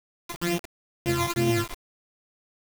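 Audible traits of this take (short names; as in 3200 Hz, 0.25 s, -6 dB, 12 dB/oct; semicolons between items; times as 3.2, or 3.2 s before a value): a buzz of ramps at a fixed pitch in blocks of 128 samples; phasing stages 12, 2.2 Hz, lowest notch 470–1500 Hz; a quantiser's noise floor 6-bit, dither none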